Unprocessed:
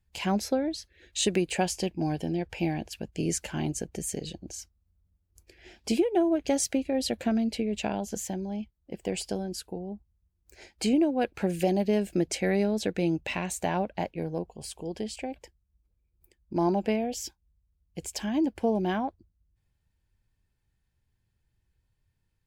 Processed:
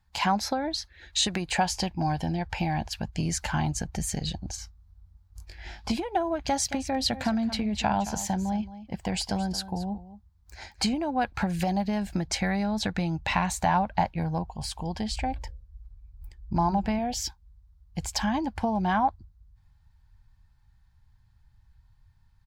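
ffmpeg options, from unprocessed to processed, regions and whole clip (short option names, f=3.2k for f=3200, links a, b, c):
-filter_complex "[0:a]asettb=1/sr,asplit=3[a][b][c];[a]atrim=end=4.564[d];[b]atrim=start=4.56:end=5.91,asetpts=PTS-STARTPTS,afade=t=in:d=0.004:c=qsin,afade=t=out:st=1.346:d=0.004:c=qsin,acrossover=split=3200[e][f];[f]acompressor=threshold=-44dB:ratio=4:attack=1:release=60[g];[e][g]amix=inputs=2:normalize=0,asplit=2[h][i];[i]adelay=20,volume=-3dB[j];[h][j]amix=inputs=2:normalize=0,atrim=end_sample=59535[k];[c]atrim=start=5.906[l];[d][k]acrossfade=d=0.004:c1=hsin:c2=qsin[m];[m][l]acrossfade=d=0.004:c1=qsin:c2=hsin,asettb=1/sr,asplit=3[n][o][p];[n]atrim=end=6.444[q];[o]atrim=start=6.44:end=10.94,asetpts=PTS-STARTPTS,afade=t=in:d=0.004:c=qsin,afade=t=out:st=4.496:d=0.004:c=qsin,highpass=49,aecho=1:1:221:0.168,atrim=end_sample=198450[r];[p]atrim=start=10.936[s];[q][r]acrossfade=d=0.004:c1=hsin:c2=qsin[t];[t][s]acrossfade=d=0.004:c1=qsin:c2=hsin,asettb=1/sr,asplit=3[u][v][w];[u]atrim=end=15.114[x];[v]atrim=start=15.11:end=16.99,asetpts=PTS-STARTPTS,afade=t=in:d=0.004:c=qsin,afade=t=out:st=1.876:d=0.004:c=qsin,lowshelf=f=120:g=12,bandreject=f=60:t=h:w=6,bandreject=f=120:t=h:w=6,bandreject=f=180:t=h:w=6,bandreject=f=240:t=h:w=6,bandreject=f=300:t=h:w=6,bandreject=f=360:t=h:w=6,bandreject=f=420:t=h:w=6,bandreject=f=480:t=h:w=6,bandreject=f=540:t=h:w=6[y];[w]atrim=start=16.986[z];[x][y]acrossfade=d=0.004:c1=hsin:c2=qsin[aa];[aa][z]acrossfade=d=0.004:c1=qsin:c2=hsin,asubboost=boost=4:cutoff=150,acompressor=threshold=-27dB:ratio=6,firequalizer=gain_entry='entry(220,0);entry(420,-8);entry(840,12);entry(2700,-1);entry(4000,6);entry(8300,-3)':delay=0.05:min_phase=1,volume=3.5dB"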